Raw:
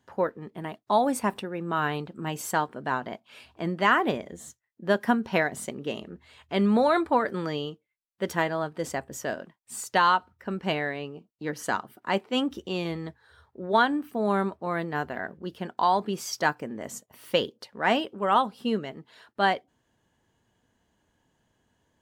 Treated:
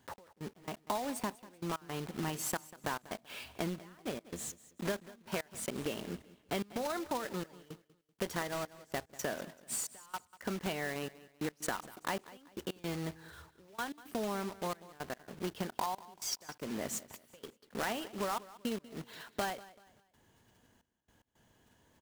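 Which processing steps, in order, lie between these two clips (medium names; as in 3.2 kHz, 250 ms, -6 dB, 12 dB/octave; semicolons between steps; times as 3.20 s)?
block-companded coder 3-bit; compression 10:1, threshold -36 dBFS, peak gain reduction 20.5 dB; trance gate "x..x.xxxx" 111 bpm -24 dB; feedback delay 192 ms, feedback 34%, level -18.5 dB; trim +3 dB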